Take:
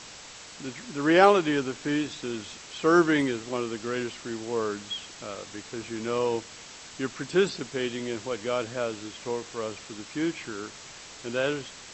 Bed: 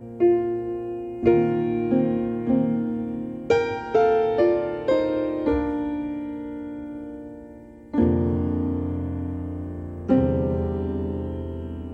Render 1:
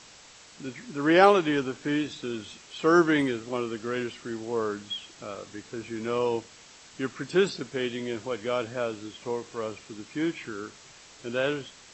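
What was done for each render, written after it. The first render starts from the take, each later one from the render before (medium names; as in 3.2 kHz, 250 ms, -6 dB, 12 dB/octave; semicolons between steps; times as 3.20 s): noise print and reduce 6 dB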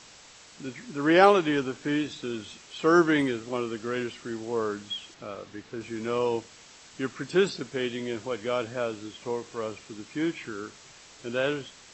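5.14–5.81 s: distance through air 99 m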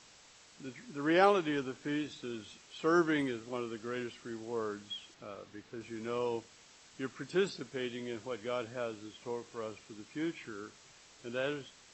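trim -8 dB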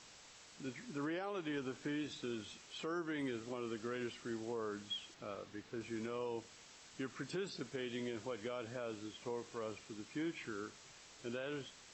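compression 10:1, threshold -34 dBFS, peak gain reduction 14.5 dB; peak limiter -32 dBFS, peak gain reduction 6.5 dB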